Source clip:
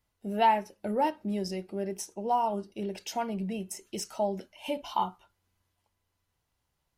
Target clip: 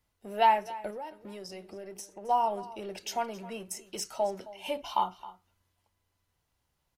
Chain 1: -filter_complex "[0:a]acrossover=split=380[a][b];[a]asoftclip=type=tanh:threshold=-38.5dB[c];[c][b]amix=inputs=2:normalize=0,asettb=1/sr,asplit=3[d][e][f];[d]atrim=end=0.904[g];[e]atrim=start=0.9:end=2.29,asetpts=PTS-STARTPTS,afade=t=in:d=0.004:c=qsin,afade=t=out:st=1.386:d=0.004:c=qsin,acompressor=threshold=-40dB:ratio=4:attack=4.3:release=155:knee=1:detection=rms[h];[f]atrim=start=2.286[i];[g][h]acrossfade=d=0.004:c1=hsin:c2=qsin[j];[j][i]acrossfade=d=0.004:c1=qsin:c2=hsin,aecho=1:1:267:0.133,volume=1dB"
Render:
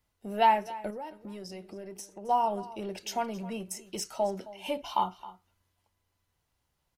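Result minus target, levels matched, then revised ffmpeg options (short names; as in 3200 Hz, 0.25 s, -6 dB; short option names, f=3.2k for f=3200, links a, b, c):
soft clip: distortion -5 dB
-filter_complex "[0:a]acrossover=split=380[a][b];[a]asoftclip=type=tanh:threshold=-48dB[c];[c][b]amix=inputs=2:normalize=0,asettb=1/sr,asplit=3[d][e][f];[d]atrim=end=0.904[g];[e]atrim=start=0.9:end=2.29,asetpts=PTS-STARTPTS,afade=t=in:d=0.004:c=qsin,afade=t=out:st=1.386:d=0.004:c=qsin,acompressor=threshold=-40dB:ratio=4:attack=4.3:release=155:knee=1:detection=rms[h];[f]atrim=start=2.286[i];[g][h]acrossfade=d=0.004:c1=hsin:c2=qsin[j];[j][i]acrossfade=d=0.004:c1=qsin:c2=hsin,aecho=1:1:267:0.133,volume=1dB"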